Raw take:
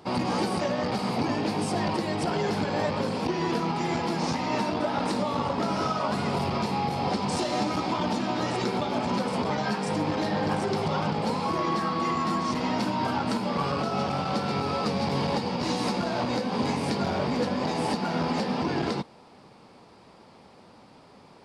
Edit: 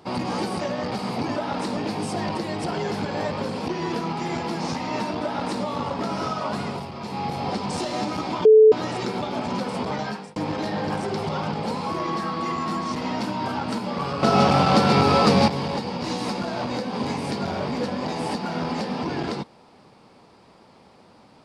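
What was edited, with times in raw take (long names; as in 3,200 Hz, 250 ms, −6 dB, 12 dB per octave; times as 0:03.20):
0:04.82–0:05.23: duplicate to 0:01.36
0:06.19–0:06.85: duck −8 dB, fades 0.28 s
0:08.04–0:08.31: beep over 435 Hz −8 dBFS
0:09.61–0:09.95: fade out
0:13.82–0:15.07: clip gain +10.5 dB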